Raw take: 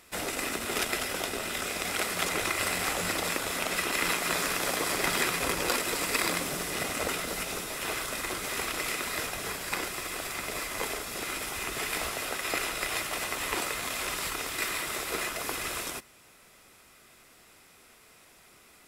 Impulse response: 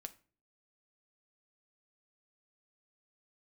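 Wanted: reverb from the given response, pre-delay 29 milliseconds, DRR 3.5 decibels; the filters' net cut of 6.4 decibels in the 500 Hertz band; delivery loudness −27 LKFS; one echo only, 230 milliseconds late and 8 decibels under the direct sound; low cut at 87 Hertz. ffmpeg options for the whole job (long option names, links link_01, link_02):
-filter_complex "[0:a]highpass=87,equalizer=frequency=500:width_type=o:gain=-8.5,aecho=1:1:230:0.398,asplit=2[link_01][link_02];[1:a]atrim=start_sample=2205,adelay=29[link_03];[link_02][link_03]afir=irnorm=-1:irlink=0,volume=1.5dB[link_04];[link_01][link_04]amix=inputs=2:normalize=0,volume=1.5dB"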